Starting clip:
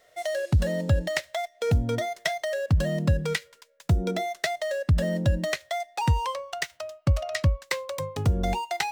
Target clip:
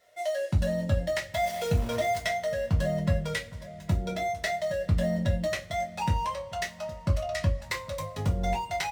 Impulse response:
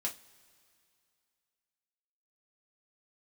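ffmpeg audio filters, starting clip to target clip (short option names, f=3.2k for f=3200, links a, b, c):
-filter_complex "[0:a]asettb=1/sr,asplit=3[a][b][c];[a]atrim=end=1.344[d];[b]atrim=start=1.34:end=2.18,asetpts=PTS-STARTPTS,afade=t=in:d=0.004:c=qsin,afade=t=out:st=0.836:d=0.004:c=qsin,aeval=exprs='val(0)+0.5*0.0398*sgn(val(0))':c=same[e];[c]atrim=start=2.176[f];[d][e]acrossfade=d=0.004:c1=hsin:c2=qsin[g];[g][f]acrossfade=d=0.004:c1=qsin:c2=hsin,asplit=2[h][i];[i]adelay=812,lowpass=f=2k:p=1,volume=-16.5dB,asplit=2[j][k];[k]adelay=812,lowpass=f=2k:p=1,volume=0.5,asplit=2[l][m];[m]adelay=812,lowpass=f=2k:p=1,volume=0.5,asplit=2[n][o];[o]adelay=812,lowpass=f=2k:p=1,volume=0.5[p];[h][j][l][n][p]amix=inputs=5:normalize=0[q];[1:a]atrim=start_sample=2205[r];[q][r]afir=irnorm=-1:irlink=0,volume=-4.5dB"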